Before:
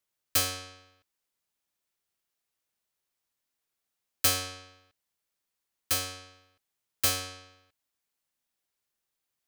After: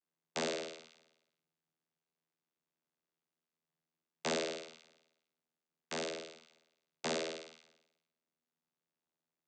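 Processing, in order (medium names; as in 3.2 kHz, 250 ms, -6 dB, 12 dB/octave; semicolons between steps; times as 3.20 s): flutter echo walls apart 9.1 m, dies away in 0.95 s; ring modulator 500 Hz; vocoder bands 16, saw 80.5 Hz; trim -4.5 dB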